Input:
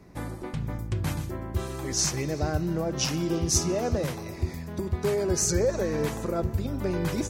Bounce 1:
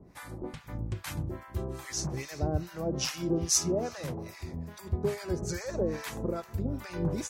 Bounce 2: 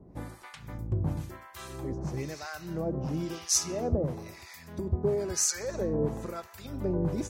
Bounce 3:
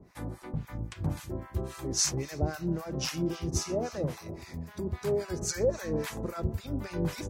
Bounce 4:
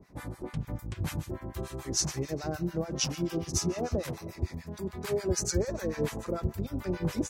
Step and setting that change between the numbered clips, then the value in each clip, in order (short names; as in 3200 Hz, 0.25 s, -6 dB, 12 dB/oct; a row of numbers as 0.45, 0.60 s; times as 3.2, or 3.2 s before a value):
harmonic tremolo, rate: 2.4, 1, 3.7, 6.8 Hz